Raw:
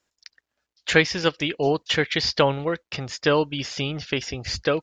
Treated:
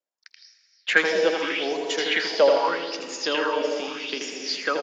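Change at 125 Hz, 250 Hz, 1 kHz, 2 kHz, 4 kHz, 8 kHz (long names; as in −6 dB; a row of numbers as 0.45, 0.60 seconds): below −20 dB, −5.0 dB, +1.0 dB, +1.0 dB, −1.5 dB, −0.5 dB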